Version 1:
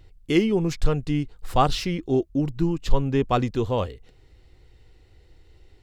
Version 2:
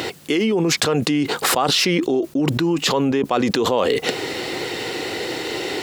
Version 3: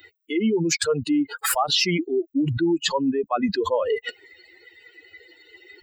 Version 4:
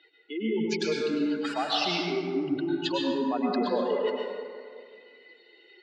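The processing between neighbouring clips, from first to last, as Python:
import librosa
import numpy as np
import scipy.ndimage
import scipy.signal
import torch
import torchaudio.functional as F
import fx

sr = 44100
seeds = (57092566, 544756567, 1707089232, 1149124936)

y1 = scipy.signal.sosfilt(scipy.signal.bessel(4, 300.0, 'highpass', norm='mag', fs=sr, output='sos'), x)
y1 = fx.env_flatten(y1, sr, amount_pct=100)
y1 = y1 * 10.0 ** (-1.5 / 20.0)
y2 = fx.bin_expand(y1, sr, power=3.0)
y2 = y2 * 10.0 ** (2.0 / 20.0)
y3 = fx.cabinet(y2, sr, low_hz=200.0, low_slope=24, high_hz=4700.0, hz=(320.0, 1200.0, 1900.0), db=(-4, -6, -6))
y3 = fx.rev_plate(y3, sr, seeds[0], rt60_s=2.1, hf_ratio=0.45, predelay_ms=90, drr_db=-2.0)
y3 = y3 * 10.0 ** (-7.0 / 20.0)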